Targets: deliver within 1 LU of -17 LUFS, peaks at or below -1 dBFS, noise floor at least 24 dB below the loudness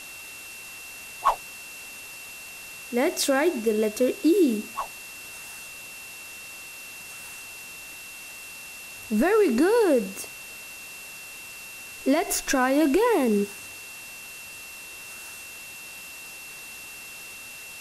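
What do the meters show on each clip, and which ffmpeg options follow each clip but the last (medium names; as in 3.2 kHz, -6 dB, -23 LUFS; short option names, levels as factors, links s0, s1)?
steady tone 2.7 kHz; tone level -41 dBFS; noise floor -41 dBFS; noise floor target -49 dBFS; loudness -24.5 LUFS; peak level -9.0 dBFS; loudness target -17.0 LUFS
-> -af "bandreject=f=2700:w=30"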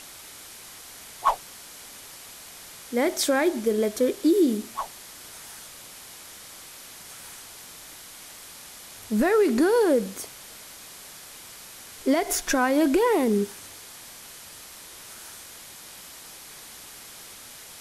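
steady tone not found; noise floor -45 dBFS; noise floor target -48 dBFS
-> -af "afftdn=nr=6:nf=-45"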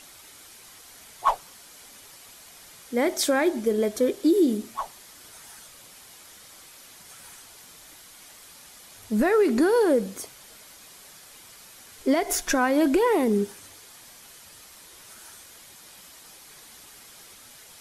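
noise floor -49 dBFS; loudness -23.5 LUFS; peak level -9.0 dBFS; loudness target -17.0 LUFS
-> -af "volume=2.11"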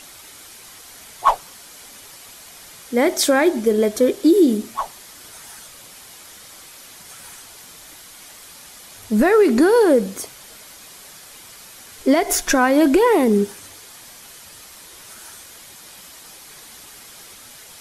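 loudness -17.0 LUFS; peak level -2.5 dBFS; noise floor -43 dBFS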